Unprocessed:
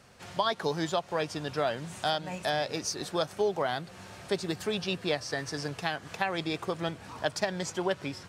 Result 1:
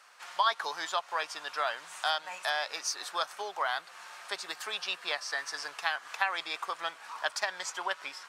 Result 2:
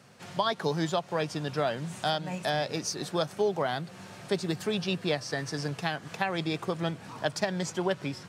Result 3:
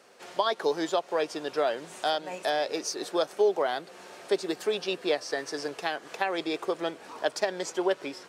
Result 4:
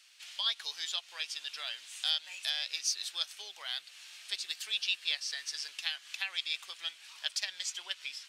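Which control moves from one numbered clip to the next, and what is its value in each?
resonant high-pass, frequency: 1100, 140, 380, 3000 Hz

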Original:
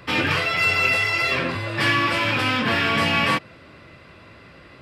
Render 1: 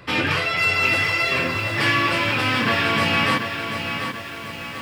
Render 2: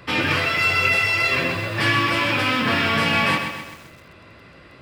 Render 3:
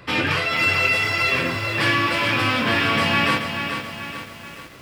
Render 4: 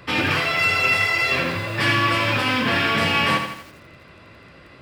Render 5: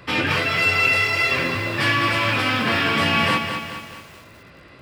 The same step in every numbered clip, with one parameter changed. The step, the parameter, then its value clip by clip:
lo-fi delay, time: 737, 129, 433, 82, 210 ms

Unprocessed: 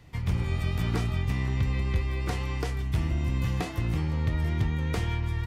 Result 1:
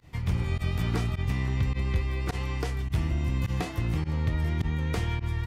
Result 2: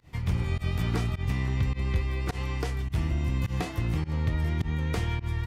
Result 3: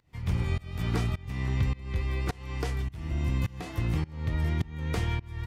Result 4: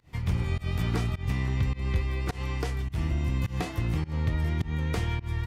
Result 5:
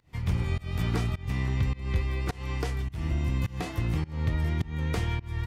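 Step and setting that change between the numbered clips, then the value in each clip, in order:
pump, release: 62, 103, 472, 161, 270 ms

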